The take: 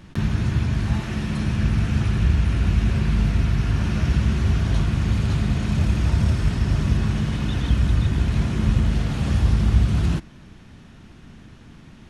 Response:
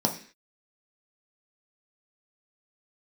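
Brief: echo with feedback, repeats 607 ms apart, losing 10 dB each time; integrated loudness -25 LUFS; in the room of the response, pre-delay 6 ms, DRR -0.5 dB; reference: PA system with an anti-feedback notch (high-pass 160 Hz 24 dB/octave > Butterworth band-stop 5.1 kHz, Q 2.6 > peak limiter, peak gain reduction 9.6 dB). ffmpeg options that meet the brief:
-filter_complex "[0:a]aecho=1:1:607|1214|1821|2428:0.316|0.101|0.0324|0.0104,asplit=2[s0][s1];[1:a]atrim=start_sample=2205,adelay=6[s2];[s1][s2]afir=irnorm=-1:irlink=0,volume=0.316[s3];[s0][s3]amix=inputs=2:normalize=0,highpass=f=160:w=0.5412,highpass=f=160:w=1.3066,asuperstop=centerf=5100:order=8:qfactor=2.6,volume=0.668,alimiter=limit=0.133:level=0:latency=1"

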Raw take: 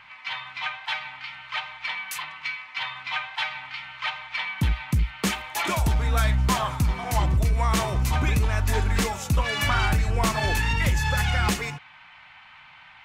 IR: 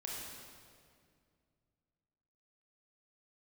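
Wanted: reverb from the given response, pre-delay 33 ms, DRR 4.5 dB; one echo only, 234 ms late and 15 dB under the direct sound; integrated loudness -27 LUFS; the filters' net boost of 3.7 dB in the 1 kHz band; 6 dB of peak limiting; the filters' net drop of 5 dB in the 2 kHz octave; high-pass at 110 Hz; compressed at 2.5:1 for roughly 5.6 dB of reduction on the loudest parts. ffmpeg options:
-filter_complex "[0:a]highpass=110,equalizer=f=1000:t=o:g=6.5,equalizer=f=2000:t=o:g=-8.5,acompressor=threshold=0.0447:ratio=2.5,alimiter=limit=0.0944:level=0:latency=1,aecho=1:1:234:0.178,asplit=2[s0][s1];[1:a]atrim=start_sample=2205,adelay=33[s2];[s1][s2]afir=irnorm=-1:irlink=0,volume=0.596[s3];[s0][s3]amix=inputs=2:normalize=0,volume=1.5"

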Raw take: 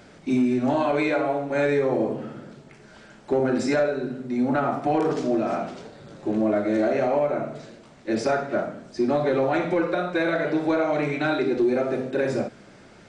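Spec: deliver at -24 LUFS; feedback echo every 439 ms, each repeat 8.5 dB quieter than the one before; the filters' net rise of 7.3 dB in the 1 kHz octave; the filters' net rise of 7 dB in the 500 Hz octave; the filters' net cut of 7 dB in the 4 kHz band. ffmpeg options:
-af "equalizer=f=500:t=o:g=6.5,equalizer=f=1000:t=o:g=8,equalizer=f=4000:t=o:g=-9,aecho=1:1:439|878|1317|1756:0.376|0.143|0.0543|0.0206,volume=0.531"

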